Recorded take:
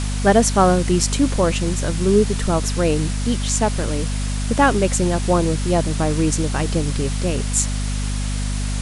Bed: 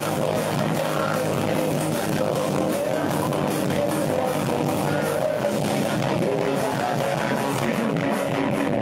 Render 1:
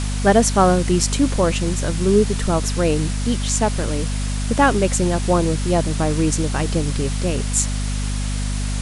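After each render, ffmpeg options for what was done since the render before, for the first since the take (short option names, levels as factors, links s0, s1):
-af anull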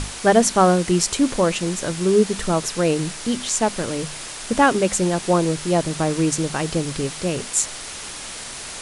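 -af "bandreject=f=50:t=h:w=6,bandreject=f=100:t=h:w=6,bandreject=f=150:t=h:w=6,bandreject=f=200:t=h:w=6,bandreject=f=250:t=h:w=6"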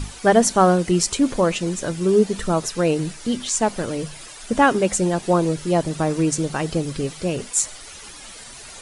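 -af "afftdn=nr=11:nf=-34"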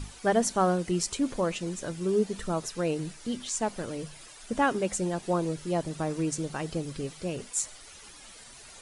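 -af "volume=0.335"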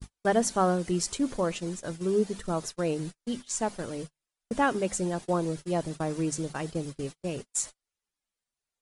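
-af "adynamicequalizer=threshold=0.00224:dfrequency=2600:dqfactor=2.5:tfrequency=2600:tqfactor=2.5:attack=5:release=100:ratio=0.375:range=1.5:mode=cutabove:tftype=bell,agate=range=0.00794:threshold=0.0158:ratio=16:detection=peak"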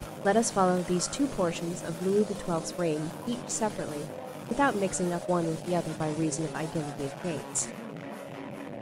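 -filter_complex "[1:a]volume=0.141[s0];[0:a][s0]amix=inputs=2:normalize=0"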